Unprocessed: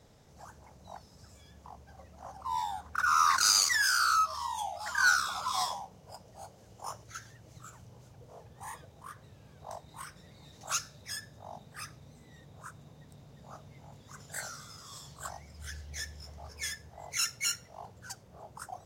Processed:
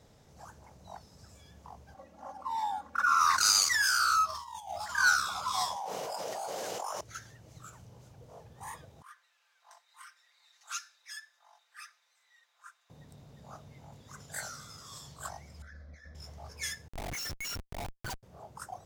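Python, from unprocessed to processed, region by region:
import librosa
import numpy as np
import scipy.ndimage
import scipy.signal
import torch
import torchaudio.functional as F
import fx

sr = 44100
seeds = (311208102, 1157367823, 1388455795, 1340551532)

y = fx.chain(x, sr, fx.highpass(hz=150.0, slope=12),
    fx.high_shelf(hz=2700.0, db=-8.0),
    fx.comb(ms=3.6, depth=0.88), at=(1.94, 3.21))
y = fx.chain(y, sr, fx.over_compress(threshold_db=-40.0, ratio=-0.5),
    fx.quant_float(bits=4), at=(4.29, 4.91))
y = fx.chain(y, sr, fx.cheby1_highpass(hz=550.0, order=2),
    fx.env_flatten(amount_pct=100), at=(5.76, 7.01))
y = fx.chain(y, sr, fx.ladder_highpass(hz=1100.0, resonance_pct=25),
    fx.high_shelf(hz=8200.0, db=-6.5),
    fx.comb(ms=5.8, depth=0.55), at=(9.02, 12.9))
y = fx.chain(y, sr, fx.over_compress(threshold_db=-44.0, ratio=-1.0),
    fx.air_absorb(metres=280.0),
    fx.fixed_phaser(hz=580.0, stages=8), at=(15.62, 16.15))
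y = fx.chain(y, sr, fx.spec_expand(power=2.2),
    fx.notch(hz=350.0, q=7.8),
    fx.schmitt(flips_db=-46.0), at=(16.88, 18.23))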